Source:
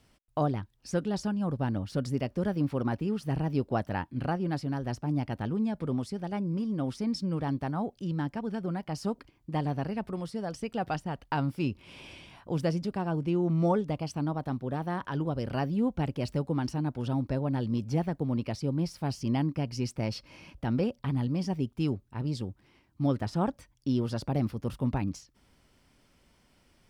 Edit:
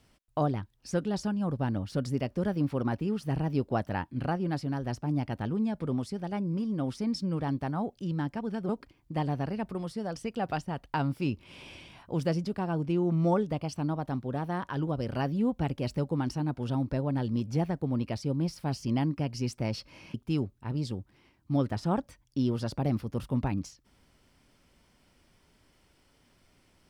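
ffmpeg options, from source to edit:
-filter_complex "[0:a]asplit=3[a][b][c];[a]atrim=end=8.692[d];[b]atrim=start=9.068:end=20.522[e];[c]atrim=start=21.638[f];[d][e]acrossfade=d=0.004:c1=hsin:c2=hsin[g];[g][f]acrossfade=d=0.004:c1=hsin:c2=hsin"

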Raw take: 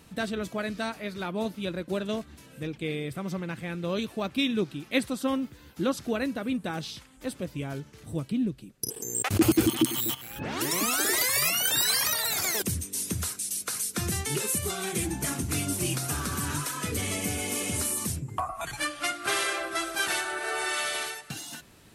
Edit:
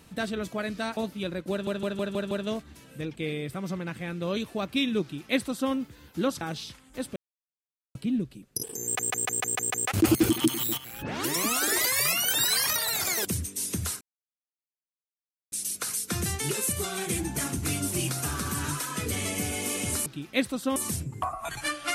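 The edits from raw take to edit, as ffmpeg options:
-filter_complex "[0:a]asplit=19[a][b][c][d][e][f][g][h][i][j][k][l][m][n][o][p][q][r][s];[a]atrim=end=0.972[t];[b]atrim=start=1.388:end=2.092[u];[c]atrim=start=1.928:end=2.092[v];[d]atrim=start=1.928:end=2.092[w];[e]atrim=start=1.928:end=2.092[x];[f]atrim=start=1.928:end=2.092[y];[g]atrim=start=1.928:end=6.032[z];[h]atrim=start=6.678:end=7.43,asetpts=PTS-STARTPTS,afade=t=out:st=0.748:d=0.004:c=hsin[aa];[i]atrim=start=7.43:end=8.22,asetpts=PTS-STARTPTS,volume=0[ab];[j]atrim=start=8.22:end=9.262,asetpts=PTS-STARTPTS,afade=t=in:d=0.004:c=hsin[ac];[k]atrim=start=9.108:end=9.262[ad];[l]atrim=start=9.108:end=9.262[ae];[m]atrim=start=9.108:end=9.262[af];[n]atrim=start=9.108:end=9.262[ag];[o]atrim=start=9.108:end=9.262[ah];[p]atrim=start=9.108:end=13.38,asetpts=PTS-STARTPTS,afade=t=out:st=4.268:d=0.004:c=hsin,apad=pad_dur=1.51[ai];[q]atrim=start=13.38:end=17.922,asetpts=PTS-STARTPTS,afade=t=in:d=0.004:c=hsin[aj];[r]atrim=start=4.638:end=5.342[ak];[s]atrim=start=17.918[al];[t][u]acrossfade=d=0.004:c1=hsin:c2=hsin[am];[am][v]acrossfade=d=0.004:c1=hsin:c2=hsin[an];[an][w]acrossfade=d=0.004:c1=hsin:c2=hsin[ao];[ao][x]acrossfade=d=0.004:c1=hsin:c2=hsin[ap];[ap][y]acrossfade=d=0.004:c1=hsin:c2=hsin[aq];[aq][z]acrossfade=d=0.004:c1=hsin:c2=hsin[ar];[aa][ab][ac]concat=n=3:v=0:a=1[as];[ar][as]acrossfade=d=0.004:c1=hsin:c2=hsin[at];[at][ad]acrossfade=d=0.004:c1=hsin:c2=hsin[au];[au][ae]acrossfade=d=0.004:c1=hsin:c2=hsin[av];[av][af]acrossfade=d=0.004:c1=hsin:c2=hsin[aw];[aw][ag]acrossfade=d=0.004:c1=hsin:c2=hsin[ax];[ax][ah]acrossfade=d=0.004:c1=hsin:c2=hsin[ay];[ai][aj]concat=n=2:v=0:a=1[az];[ay][az]acrossfade=d=0.004:c1=hsin:c2=hsin[ba];[ba][ak]acrossfade=d=0.004:c1=hsin:c2=hsin[bb];[bb][al]acrossfade=d=0.004:c1=hsin:c2=hsin"

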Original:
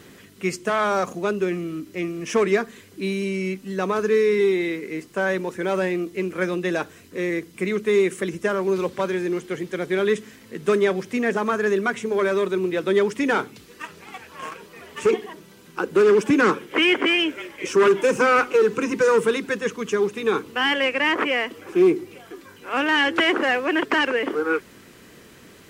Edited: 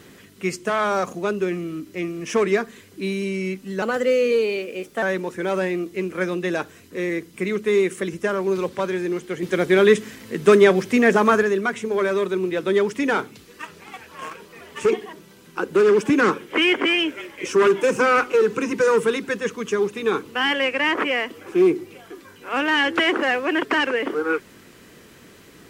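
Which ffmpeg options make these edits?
-filter_complex "[0:a]asplit=5[a][b][c][d][e];[a]atrim=end=3.824[f];[b]atrim=start=3.82:end=5.23,asetpts=PTS-STARTPTS,asetrate=51597,aresample=44100,atrim=end_sample=53146,asetpts=PTS-STARTPTS[g];[c]atrim=start=5.226:end=9.632[h];[d]atrim=start=9.628:end=11.632,asetpts=PTS-STARTPTS,volume=6.5dB[i];[e]atrim=start=11.628[j];[f][g]acrossfade=d=0.004:c1=hsin:c2=hsin[k];[k][h]acrossfade=d=0.004:c1=hsin:c2=hsin[l];[l][i]acrossfade=d=0.004:c1=hsin:c2=hsin[m];[m][j]acrossfade=d=0.004:c1=hsin:c2=hsin"

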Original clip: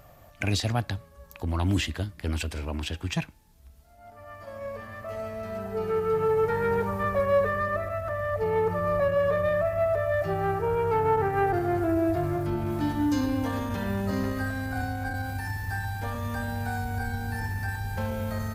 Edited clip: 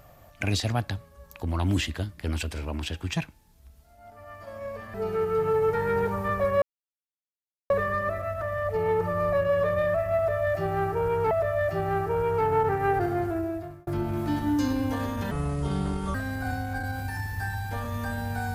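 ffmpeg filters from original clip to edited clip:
-filter_complex "[0:a]asplit=7[a][b][c][d][e][f][g];[a]atrim=end=4.942[h];[b]atrim=start=5.688:end=7.37,asetpts=PTS-STARTPTS,afade=t=out:st=1.678:d=0.004:c=hsin,apad=pad_dur=1.08[i];[c]atrim=start=7.37:end=10.982,asetpts=PTS-STARTPTS,afade=t=in:d=0.004:c=hsin[j];[d]atrim=start=9.838:end=12.4,asetpts=PTS-STARTPTS,afade=t=out:st=1.772:d=0.79[k];[e]atrim=start=12.4:end=13.844,asetpts=PTS-STARTPTS,afade=t=in:d=0.004:c=hsin[l];[f]atrim=start=13.84:end=14.45,asetpts=PTS-STARTPTS,asetrate=32193,aresample=44100[m];[g]atrim=start=14.446[n];[i][j]concat=n=2:v=0:a=1[o];[h][o]acrossfade=d=0.004:c1=hsin:c2=hsin[p];[k][l]concat=n=2:v=0:a=1[q];[p][q]acrossfade=d=0.004:c1=hsin:c2=hsin[r];[r][m]acrossfade=d=0.004:c1=hsin:c2=hsin[s];[s][n]acrossfade=d=0.004:c1=hsin:c2=hsin"

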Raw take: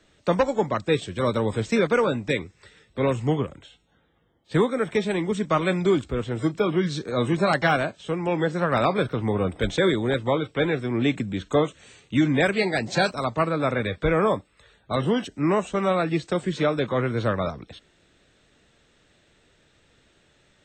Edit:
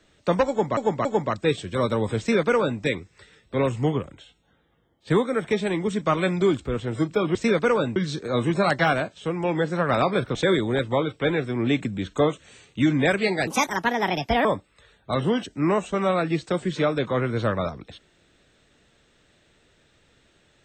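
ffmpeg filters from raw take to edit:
-filter_complex "[0:a]asplit=8[a][b][c][d][e][f][g][h];[a]atrim=end=0.772[i];[b]atrim=start=0.488:end=0.772[j];[c]atrim=start=0.488:end=6.792[k];[d]atrim=start=1.628:end=2.242[l];[e]atrim=start=6.788:end=9.182[m];[f]atrim=start=9.698:end=12.824[n];[g]atrim=start=12.82:end=14.26,asetpts=PTS-STARTPTS,asetrate=64827,aresample=44100[o];[h]atrim=start=14.256[p];[i][j]acrossfade=d=0.004:c1=hsin:c2=hsin[q];[q][k]acrossfade=d=0.004:c1=hsin:c2=hsin[r];[r][l]acrossfade=d=0.004:c1=hsin:c2=hsin[s];[s][m]acrossfade=d=0.004:c1=hsin:c2=hsin[t];[t][n]acrossfade=d=0.004:c1=hsin:c2=hsin[u];[u][o]acrossfade=d=0.004:c1=hsin:c2=hsin[v];[v][p]acrossfade=d=0.004:c1=hsin:c2=hsin"

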